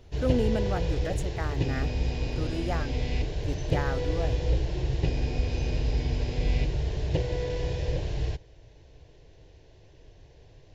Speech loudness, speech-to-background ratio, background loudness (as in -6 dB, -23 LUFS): -34.0 LUFS, -4.0 dB, -30.0 LUFS